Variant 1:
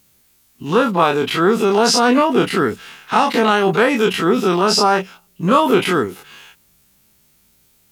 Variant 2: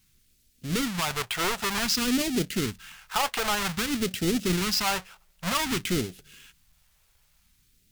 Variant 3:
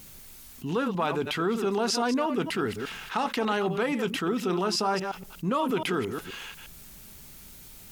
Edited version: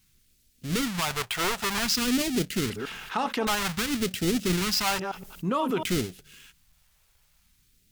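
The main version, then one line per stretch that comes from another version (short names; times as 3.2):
2
2.7–3.47 from 3
4.99–5.84 from 3
not used: 1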